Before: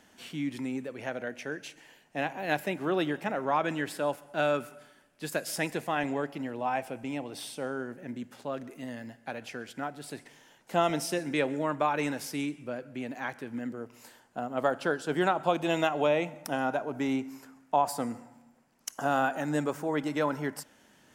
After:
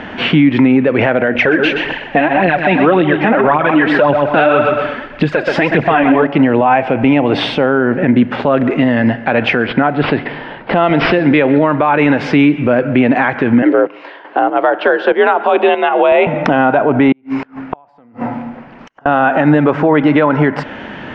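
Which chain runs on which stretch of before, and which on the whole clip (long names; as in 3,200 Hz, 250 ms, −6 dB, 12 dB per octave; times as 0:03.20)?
0:01.35–0:06.27: phase shifter 1.8 Hz, delay 4.5 ms, feedback 64% + repeating echo 125 ms, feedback 29%, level −10.5 dB
0:09.66–0:11.96: bad sample-rate conversion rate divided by 4×, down none, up filtered + one half of a high-frequency compander decoder only
0:13.62–0:16.27: Chebyshev band-pass filter 320–4,200 Hz + frequency shifter +55 Hz + square-wave tremolo 1.6 Hz, depth 65%, duty 40%
0:17.12–0:19.06: downward compressor 4 to 1, threshold −45 dBFS + gate with flip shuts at −39 dBFS, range −32 dB
whole clip: low-pass filter 2,800 Hz 24 dB per octave; downward compressor 4 to 1, threshold −39 dBFS; boost into a limiter +34.5 dB; level −1 dB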